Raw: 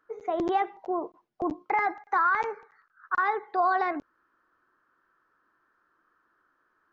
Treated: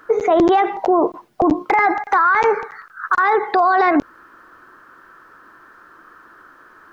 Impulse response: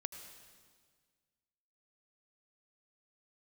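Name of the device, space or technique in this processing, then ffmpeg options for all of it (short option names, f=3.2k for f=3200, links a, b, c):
loud club master: -af "acompressor=threshold=-30dB:ratio=2,asoftclip=type=hard:threshold=-21dB,alimiter=level_in=31dB:limit=-1dB:release=50:level=0:latency=1,volume=-6.5dB"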